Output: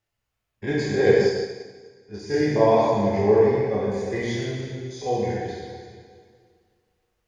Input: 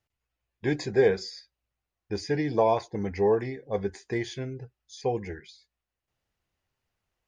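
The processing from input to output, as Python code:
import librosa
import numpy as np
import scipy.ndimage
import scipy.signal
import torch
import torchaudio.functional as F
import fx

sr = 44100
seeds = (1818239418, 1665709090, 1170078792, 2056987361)

y = fx.spec_steps(x, sr, hold_ms=50)
y = fx.rev_plate(y, sr, seeds[0], rt60_s=2.0, hf_ratio=0.95, predelay_ms=0, drr_db=-6.5)
y = fx.upward_expand(y, sr, threshold_db=-37.0, expansion=1.5, at=(1.25, 2.34))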